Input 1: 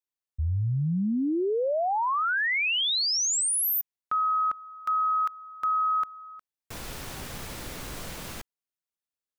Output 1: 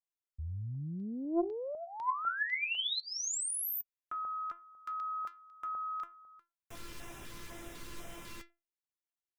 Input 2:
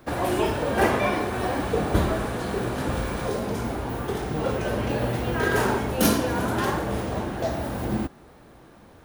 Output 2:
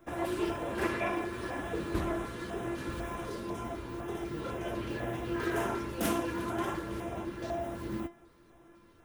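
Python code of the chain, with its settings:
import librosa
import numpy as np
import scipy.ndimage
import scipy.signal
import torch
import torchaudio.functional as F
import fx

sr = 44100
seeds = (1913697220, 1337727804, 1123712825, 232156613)

y = fx.comb_fb(x, sr, f0_hz=340.0, decay_s=0.25, harmonics='all', damping=0.2, mix_pct=90)
y = fx.filter_lfo_notch(y, sr, shape='square', hz=2.0, low_hz=720.0, high_hz=4400.0, q=2.1)
y = fx.doppler_dist(y, sr, depth_ms=0.39)
y = F.gain(torch.from_numpy(y), 4.5).numpy()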